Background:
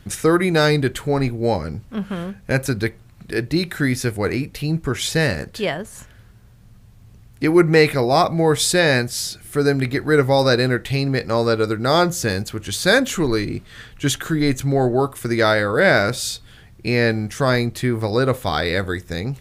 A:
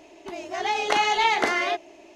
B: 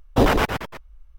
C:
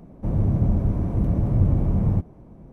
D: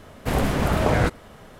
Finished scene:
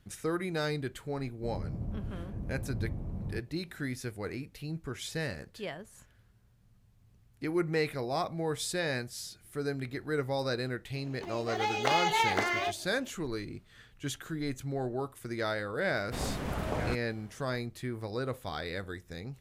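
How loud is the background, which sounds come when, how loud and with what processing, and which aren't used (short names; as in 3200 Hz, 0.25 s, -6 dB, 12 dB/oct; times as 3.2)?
background -16.5 dB
1.19 add C -17 dB
10.95 add A -6.5 dB + block floating point 7-bit
15.86 add D -13 dB
not used: B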